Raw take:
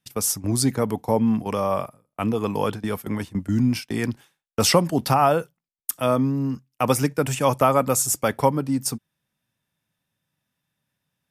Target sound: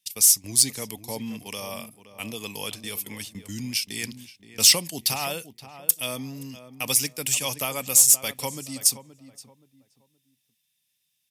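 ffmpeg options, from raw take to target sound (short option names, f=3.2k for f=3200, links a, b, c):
-filter_complex "[0:a]asplit=2[a][b];[b]adelay=523,lowpass=f=1.3k:p=1,volume=-12dB,asplit=2[c][d];[d]adelay=523,lowpass=f=1.3k:p=1,volume=0.31,asplit=2[e][f];[f]adelay=523,lowpass=f=1.3k:p=1,volume=0.31[g];[a][c][e][g]amix=inputs=4:normalize=0,aexciter=amount=6.7:drive=8.2:freq=2.1k,volume=-14dB"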